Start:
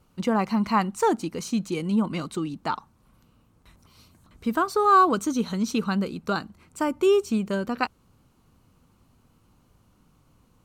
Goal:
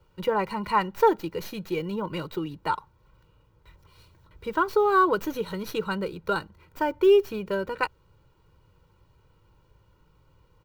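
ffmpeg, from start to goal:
ffmpeg -i in.wav -filter_complex "[0:a]aecho=1:1:2.1:0.85,acrossover=split=110|4800[link_01][link_02][link_03];[link_03]aeval=exprs='abs(val(0))':channel_layout=same[link_04];[link_01][link_02][link_04]amix=inputs=3:normalize=0,volume=-2dB" out.wav

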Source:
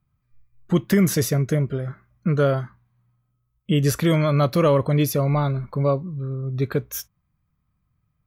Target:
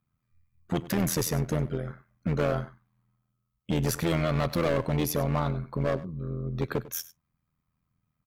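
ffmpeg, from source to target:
ffmpeg -i in.wav -filter_complex "[0:a]lowshelf=frequency=89:gain=-10,volume=20dB,asoftclip=hard,volume=-20dB,tremolo=f=83:d=0.75,asplit=2[link_01][link_02];[link_02]aecho=0:1:98:0.133[link_03];[link_01][link_03]amix=inputs=2:normalize=0" out.wav

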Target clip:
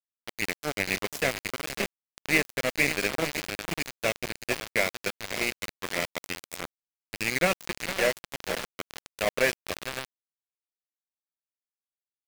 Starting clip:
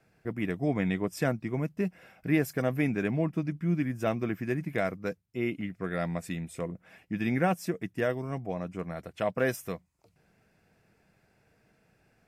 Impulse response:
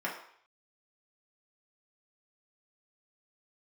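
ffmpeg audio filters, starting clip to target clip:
-filter_complex "[0:a]deesser=0.85,aexciter=amount=3:drive=9.5:freq=2100,highpass=230,equalizer=frequency=290:width_type=q:width=4:gain=-6,equalizer=frequency=560:width_type=q:width=4:gain=7,equalizer=frequency=790:width_type=q:width=4:gain=-6,equalizer=frequency=2200:width_type=q:width=4:gain=3,equalizer=frequency=3500:width_type=q:width=4:gain=-10,equalizer=frequency=5700:width_type=q:width=4:gain=-6,lowpass=frequency=7400:width=0.5412,lowpass=frequency=7400:width=1.3066,aecho=1:1:549|1098|1647:0.422|0.0928|0.0204,asplit=2[link_01][link_02];[1:a]atrim=start_sample=2205,asetrate=52920,aresample=44100,lowpass=2800[link_03];[link_02][link_03]afir=irnorm=-1:irlink=0,volume=-14.5dB[link_04];[link_01][link_04]amix=inputs=2:normalize=0,aeval=exprs='0.355*(cos(1*acos(clip(val(0)/0.355,-1,1)))-cos(1*PI/2))+0.0316*(cos(2*acos(clip(val(0)/0.355,-1,1)))-cos(2*PI/2))+0.002*(cos(8*acos(clip(val(0)/0.355,-1,1)))-cos(8*PI/2))':channel_layout=same,asplit=2[link_05][link_06];[link_06]adelay=449,lowpass=frequency=3100:poles=1,volume=-7.5dB,asplit=2[link_07][link_08];[link_08]adelay=449,lowpass=frequency=3100:poles=1,volume=0.51,asplit=2[link_09][link_10];[link_10]adelay=449,lowpass=frequency=3100:poles=1,volume=0.51,asplit=2[link_11][link_12];[link_12]adelay=449,lowpass=frequency=3100:poles=1,volume=0.51,asplit=2[link_13][link_14];[link_14]adelay=449,lowpass=frequency=3100:poles=1,volume=0.51,asplit=2[link_15][link_16];[link_16]adelay=449,lowpass=frequency=3100:poles=1,volume=0.51[link_17];[link_07][link_09][link_11][link_13][link_15][link_17]amix=inputs=6:normalize=0[link_18];[link_05][link_18]amix=inputs=2:normalize=0,aeval=exprs='val(0)*gte(abs(val(0)),0.0708)':channel_layout=same"

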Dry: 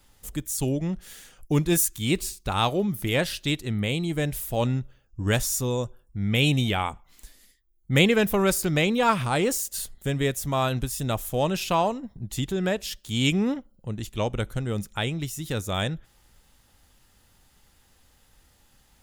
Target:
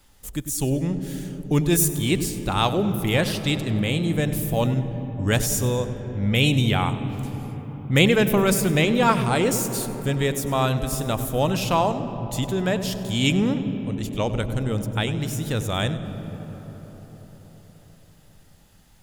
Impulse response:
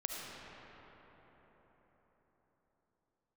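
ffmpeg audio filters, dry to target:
-filter_complex "[0:a]asplit=2[link_01][link_02];[1:a]atrim=start_sample=2205,lowshelf=frequency=440:gain=11,adelay=99[link_03];[link_02][link_03]afir=irnorm=-1:irlink=0,volume=-14.5dB[link_04];[link_01][link_04]amix=inputs=2:normalize=0,volume=2dB"

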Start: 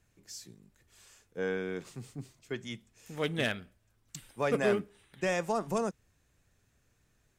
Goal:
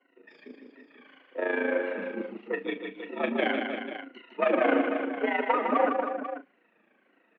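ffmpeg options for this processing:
ffmpeg -i in.wav -filter_complex "[0:a]afftfilt=real='re*pow(10,23/40*sin(2*PI*(1.9*log(max(b,1)*sr/1024/100)/log(2)-(-1.7)*(pts-256)/sr)))':imag='im*pow(10,23/40*sin(2*PI*(1.9*log(max(b,1)*sr/1024/100)/log(2)-(-1.7)*(pts-256)/sr)))':win_size=1024:overlap=0.75,aeval=exprs='(tanh(15.8*val(0)+0.25)-tanh(0.25))/15.8':channel_layout=same,tremolo=f=27:d=0.71,asplit=2[link_01][link_02];[link_02]adelay=39,volume=-11.5dB[link_03];[link_01][link_03]amix=inputs=2:normalize=0,highpass=frequency=180:width_type=q:width=0.5412,highpass=frequency=180:width_type=q:width=1.307,lowpass=frequency=2700:width_type=q:width=0.5176,lowpass=frequency=2700:width_type=q:width=0.7071,lowpass=frequency=2700:width_type=q:width=1.932,afreqshift=70,asplit=2[link_04][link_05];[link_05]aecho=0:1:155|266|317|492:0.531|0.112|0.335|0.282[link_06];[link_04][link_06]amix=inputs=2:normalize=0,volume=7.5dB" out.wav

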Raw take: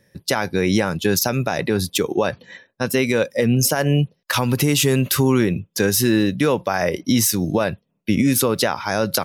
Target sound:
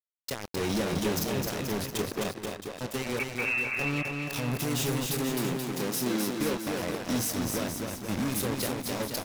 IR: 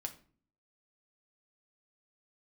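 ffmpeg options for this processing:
-filter_complex "[0:a]asplit=2[link_01][link_02];[1:a]atrim=start_sample=2205,asetrate=36603,aresample=44100,adelay=24[link_03];[link_02][link_03]afir=irnorm=-1:irlink=0,volume=-8dB[link_04];[link_01][link_04]amix=inputs=2:normalize=0,asettb=1/sr,asplit=3[link_05][link_06][link_07];[link_05]atrim=end=0.604[link_08];[link_06]atrim=start=0.6:end=1.08,asetpts=PTS-STARTPTS,afade=type=in:duration=0.004:curve=qsin,afade=type=out:start_time=0.476:duration=0.004:curve=qsin,acontrast=37[link_09];[link_07]atrim=start=1.076[link_10];[link_08][link_09]acrossfade=duration=0.004:curve1=hsin:curve2=qsin[link_11];[link_11][link_10]acrossfade=duration=0.004:curve1=qsin:curve2=hsin,equalizer=frequency=1300:width=1.1:gain=-9.5,acrusher=bits=2:mix=0:aa=0.5,asoftclip=type=hard:threshold=-20.5dB,asettb=1/sr,asplit=3[link_12][link_13][link_14];[link_12]atrim=end=3.194[link_15];[link_13]atrim=start=3.19:end=3.79,asetpts=PTS-STARTPTS,afade=type=in:duration=0.004:curve=qsin,afade=type=out:start_time=0.596:duration=0.004:curve=qsin,lowpass=frequency=2400:width_type=q:width=0.5098,lowpass=frequency=2400:width_type=q:width=0.6013,lowpass=frequency=2400:width_type=q:width=0.9,lowpass=frequency=2400:width_type=q:width=2.563,afreqshift=-2800[link_16];[link_14]atrim=start=3.786[link_17];[link_15][link_16]acrossfade=duration=0.004:curve1=hsin:curve2=qsin[link_18];[link_18][link_17]acrossfade=duration=0.004:curve1=qsin:curve2=hsin,asettb=1/sr,asplit=3[link_19][link_20][link_21];[link_19]atrim=end=5.094[link_22];[link_20]atrim=start=5.09:end=6.31,asetpts=PTS-STARTPTS,afade=type=in:duration=0.004:curve=qsin,afade=type=out:start_time=1.216:duration=0.004:curve=qsin,highpass=frequency=150:width=0.5412,highpass=frequency=150:width=1.3066[link_23];[link_21]atrim=start=6.306[link_24];[link_22][link_23]acrossfade=duration=0.004:curve1=hsin:curve2=qsin[link_25];[link_25][link_24]acrossfade=duration=0.004:curve1=qsin:curve2=hsin,aecho=1:1:260|481|668.8|828.5|964.2:0.631|0.398|0.251|0.158|0.1,volume=-5dB"

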